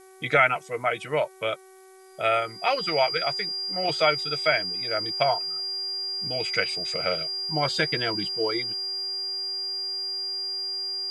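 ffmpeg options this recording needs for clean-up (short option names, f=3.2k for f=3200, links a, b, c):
-af "adeclick=t=4,bandreject=f=378.4:t=h:w=4,bandreject=f=756.8:t=h:w=4,bandreject=f=1.1352k:t=h:w=4,bandreject=f=1.5136k:t=h:w=4,bandreject=f=1.892k:t=h:w=4,bandreject=f=2.2704k:t=h:w=4,bandreject=f=4.8k:w=30,afftdn=nr=29:nf=-43"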